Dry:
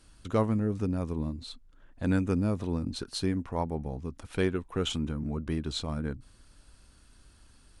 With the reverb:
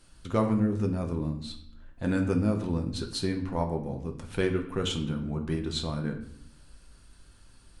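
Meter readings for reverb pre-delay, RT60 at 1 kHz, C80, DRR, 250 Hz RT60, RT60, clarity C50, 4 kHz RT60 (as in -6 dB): 6 ms, 0.65 s, 12.5 dB, 3.0 dB, 0.95 s, 0.65 s, 10.0 dB, 0.55 s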